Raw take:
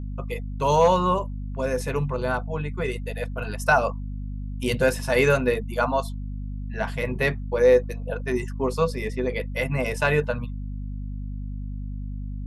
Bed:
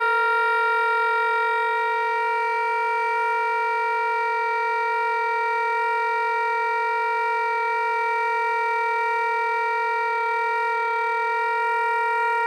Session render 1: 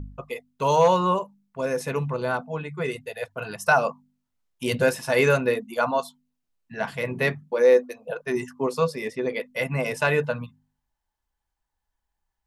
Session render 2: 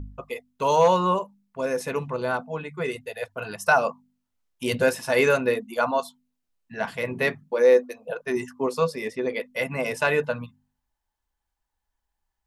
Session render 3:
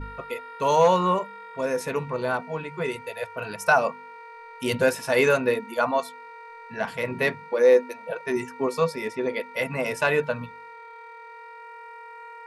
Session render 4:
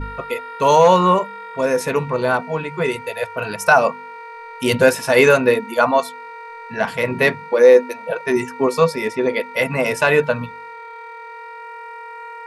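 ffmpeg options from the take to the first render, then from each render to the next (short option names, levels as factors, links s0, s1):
-af "bandreject=f=50:t=h:w=4,bandreject=f=100:t=h:w=4,bandreject=f=150:t=h:w=4,bandreject=f=200:t=h:w=4,bandreject=f=250:t=h:w=4"
-af "equalizer=f=140:t=o:w=0.22:g=-9"
-filter_complex "[1:a]volume=0.0944[s0];[0:a][s0]amix=inputs=2:normalize=0"
-af "volume=2.51,alimiter=limit=0.794:level=0:latency=1"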